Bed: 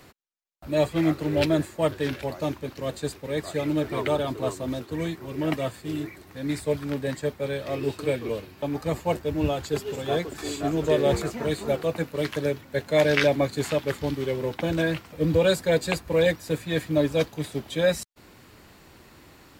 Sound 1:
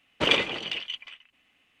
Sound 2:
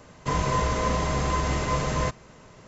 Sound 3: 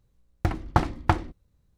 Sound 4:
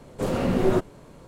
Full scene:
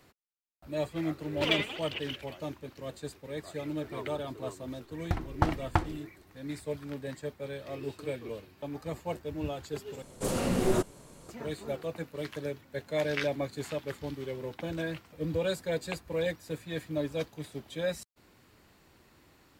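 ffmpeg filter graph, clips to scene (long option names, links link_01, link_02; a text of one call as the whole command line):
ffmpeg -i bed.wav -i cue0.wav -i cue1.wav -i cue2.wav -i cue3.wav -filter_complex "[0:a]volume=-10dB[link_01];[1:a]aphaser=in_gain=1:out_gain=1:delay=5:decay=0.67:speed=1.3:type=sinusoidal[link_02];[4:a]equalizer=frequency=9400:width=0.48:gain=14[link_03];[link_01]asplit=2[link_04][link_05];[link_04]atrim=end=10.024[link_06];[link_03]atrim=end=1.27,asetpts=PTS-STARTPTS,volume=-5.5dB[link_07];[link_05]atrim=start=11.286[link_08];[link_02]atrim=end=1.8,asetpts=PTS-STARTPTS,volume=-10dB,afade=type=in:duration=0.004:curve=hsin,afade=type=out:start_time=1.796:duration=0.004:curve=hsin,adelay=1200[link_09];[3:a]atrim=end=1.77,asetpts=PTS-STARTPTS,volume=-5.5dB,afade=type=in:duration=0.004:curve=hsin,afade=type=out:start_time=1.766:duration=0.004:curve=hsin,adelay=4660[link_10];[link_06][link_07]acrossfade=duration=0.004:curve1=hsin:curve2=hsin[link_11];[link_11][link_08]acrossfade=duration=0.004:curve1=hsin:curve2=hsin[link_12];[link_12][link_09][link_10]amix=inputs=3:normalize=0" out.wav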